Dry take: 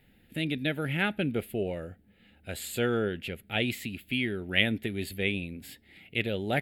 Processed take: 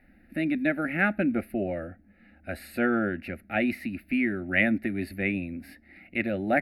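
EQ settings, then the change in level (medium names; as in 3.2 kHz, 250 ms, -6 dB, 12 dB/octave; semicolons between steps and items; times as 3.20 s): boxcar filter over 6 samples; static phaser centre 660 Hz, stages 8; +7.0 dB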